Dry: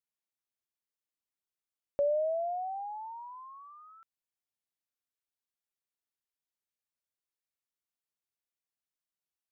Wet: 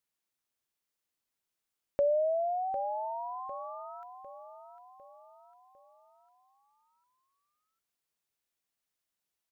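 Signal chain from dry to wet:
in parallel at −1 dB: downward compressor, threshold −42 dBFS, peak gain reduction 14.5 dB
on the sum: repeating echo 752 ms, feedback 48%, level −11.5 dB

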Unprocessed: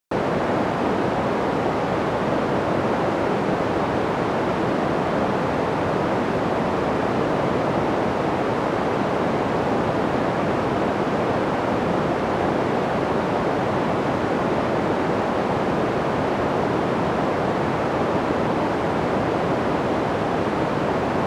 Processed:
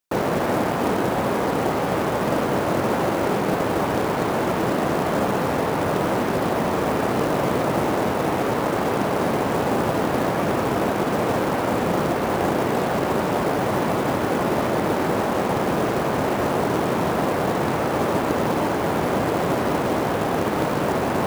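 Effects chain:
floating-point word with a short mantissa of 2 bits

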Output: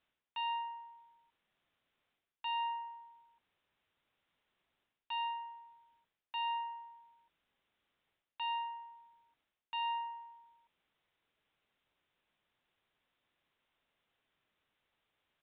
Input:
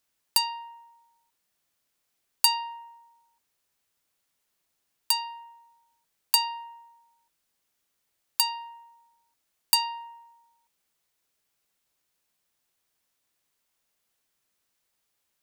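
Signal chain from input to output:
reversed playback
downward compressor 8 to 1, threshold −34 dBFS, peak gain reduction 19.5 dB
reversed playback
downsampling to 8,000 Hz
level +1.5 dB

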